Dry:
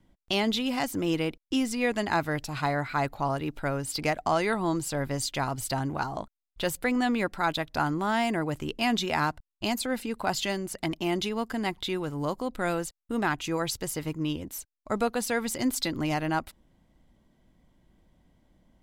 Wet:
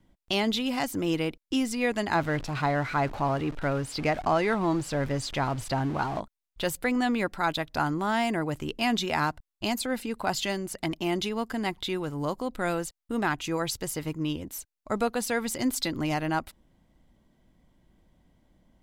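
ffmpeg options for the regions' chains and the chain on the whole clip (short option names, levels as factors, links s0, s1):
-filter_complex "[0:a]asettb=1/sr,asplit=3[s0][s1][s2];[s0]atrim=end=2.154[s3];[s1]atrim=start=2.15:end=6.2,asetpts=PTS-STARTPTS,afade=t=in:d=0.004:c=qsin,afade=t=out:st=4.046:d=0.004:c=qsin,aeval=exprs='val(0)+0.5*0.0188*sgn(val(0))':c=same,aemphasis=mode=reproduction:type=50fm[s4];[s2]atrim=start=6.196[s5];[s3][s4]acrossfade=d=0.004:c1=hsin:c2=qsin[s6];[s6][s5]acrossfade=d=0.004:c1=qsin:c2=hsin"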